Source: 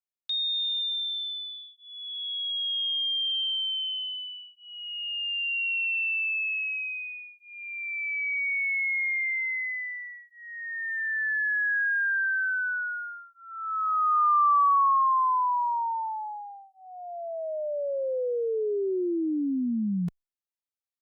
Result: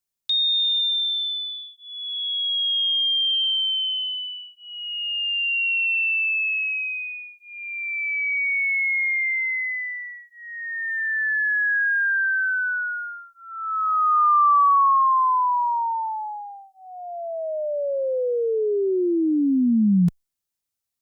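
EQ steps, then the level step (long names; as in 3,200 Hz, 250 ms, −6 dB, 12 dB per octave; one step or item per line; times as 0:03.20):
bass and treble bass +8 dB, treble +7 dB
+4.5 dB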